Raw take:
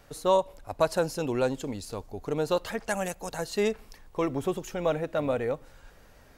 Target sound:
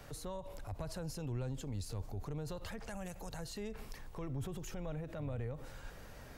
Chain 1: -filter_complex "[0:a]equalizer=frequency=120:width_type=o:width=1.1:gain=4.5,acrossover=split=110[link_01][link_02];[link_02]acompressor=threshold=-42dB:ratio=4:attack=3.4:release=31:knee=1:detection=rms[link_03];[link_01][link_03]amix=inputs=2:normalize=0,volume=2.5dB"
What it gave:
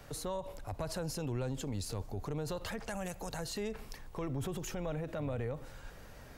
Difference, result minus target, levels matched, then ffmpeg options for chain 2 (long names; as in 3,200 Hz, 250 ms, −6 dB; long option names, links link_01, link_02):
downward compressor: peak gain reduction −6.5 dB
-filter_complex "[0:a]equalizer=frequency=120:width_type=o:width=1.1:gain=4.5,acrossover=split=110[link_01][link_02];[link_02]acompressor=threshold=-50.5dB:ratio=4:attack=3.4:release=31:knee=1:detection=rms[link_03];[link_01][link_03]amix=inputs=2:normalize=0,volume=2.5dB"